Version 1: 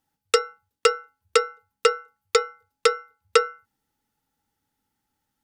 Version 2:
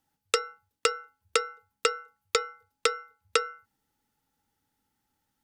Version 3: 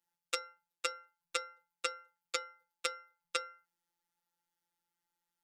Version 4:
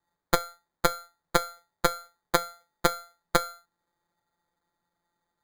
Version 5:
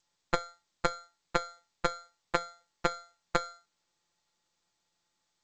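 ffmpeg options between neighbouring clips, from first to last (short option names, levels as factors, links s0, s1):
-filter_complex "[0:a]acrossover=split=1100|2900[s0][s1][s2];[s0]acompressor=threshold=0.0447:ratio=4[s3];[s1]acompressor=threshold=0.0355:ratio=4[s4];[s2]acompressor=threshold=0.0447:ratio=4[s5];[s3][s4][s5]amix=inputs=3:normalize=0"
-af "lowshelf=f=380:g=-11.5,afftfilt=real='hypot(re,im)*cos(PI*b)':imag='0':win_size=1024:overlap=0.75,volume=0.562"
-af "acrusher=samples=16:mix=1:aa=0.000001,volume=2.66"
-af "volume=0.562" -ar 16000 -c:a g722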